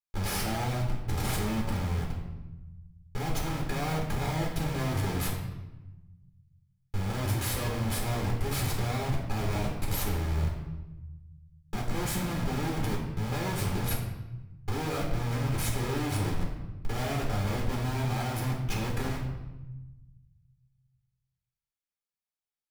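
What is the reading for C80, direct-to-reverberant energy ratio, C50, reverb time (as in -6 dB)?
6.5 dB, -3.0 dB, 4.0 dB, 1.0 s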